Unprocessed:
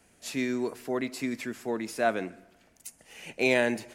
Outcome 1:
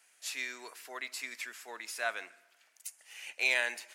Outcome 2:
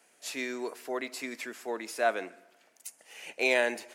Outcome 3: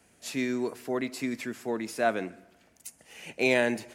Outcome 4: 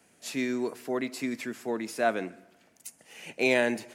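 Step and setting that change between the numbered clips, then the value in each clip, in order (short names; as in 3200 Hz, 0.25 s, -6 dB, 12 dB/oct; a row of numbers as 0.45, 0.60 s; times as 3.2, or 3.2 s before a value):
HPF, cutoff: 1300, 450, 51, 130 Hz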